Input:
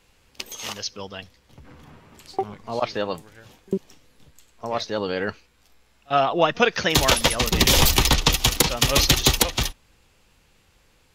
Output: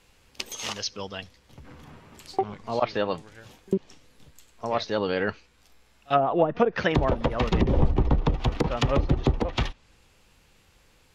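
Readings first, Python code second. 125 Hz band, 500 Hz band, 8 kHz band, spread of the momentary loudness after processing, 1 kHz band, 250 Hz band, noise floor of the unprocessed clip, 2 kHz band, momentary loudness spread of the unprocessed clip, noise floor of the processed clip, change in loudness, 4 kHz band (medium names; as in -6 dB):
0.0 dB, -1.0 dB, under -15 dB, 12 LU, -3.5 dB, 0.0 dB, -61 dBFS, -8.0 dB, 16 LU, -61 dBFS, -5.5 dB, -14.5 dB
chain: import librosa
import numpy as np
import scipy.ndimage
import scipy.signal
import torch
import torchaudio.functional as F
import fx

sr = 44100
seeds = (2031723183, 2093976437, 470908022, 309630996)

y = fx.env_lowpass_down(x, sr, base_hz=540.0, full_db=-14.0)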